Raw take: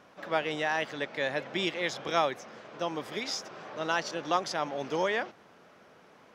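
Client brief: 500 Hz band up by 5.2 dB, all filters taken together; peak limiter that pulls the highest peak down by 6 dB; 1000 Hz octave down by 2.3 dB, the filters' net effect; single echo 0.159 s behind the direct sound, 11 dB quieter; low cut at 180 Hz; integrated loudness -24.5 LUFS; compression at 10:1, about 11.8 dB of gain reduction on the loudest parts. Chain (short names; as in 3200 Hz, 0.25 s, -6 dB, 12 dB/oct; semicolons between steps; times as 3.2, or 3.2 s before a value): HPF 180 Hz; bell 500 Hz +8.5 dB; bell 1000 Hz -7 dB; compressor 10:1, threshold -33 dBFS; limiter -29 dBFS; echo 0.159 s -11 dB; gain +15 dB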